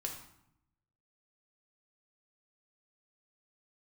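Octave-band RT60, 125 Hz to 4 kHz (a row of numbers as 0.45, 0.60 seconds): 1.2, 1.0, 0.70, 0.75, 0.65, 0.55 seconds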